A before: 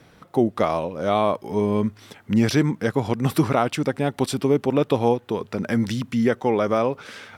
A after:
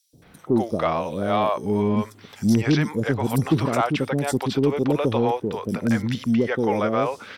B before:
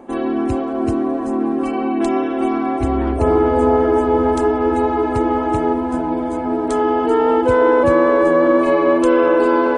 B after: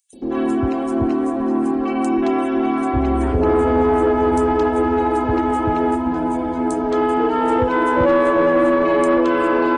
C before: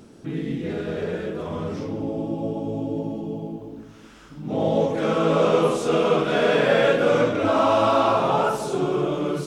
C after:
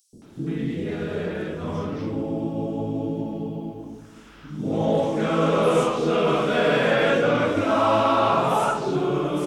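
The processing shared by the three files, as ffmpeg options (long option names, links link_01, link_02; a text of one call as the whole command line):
ffmpeg -i in.wav -filter_complex "[0:a]acrossover=split=510|5200[link_01][link_02][link_03];[link_01]adelay=130[link_04];[link_02]adelay=220[link_05];[link_04][link_05][link_03]amix=inputs=3:normalize=0,asoftclip=type=tanh:threshold=-9dB,volume=1.5dB" out.wav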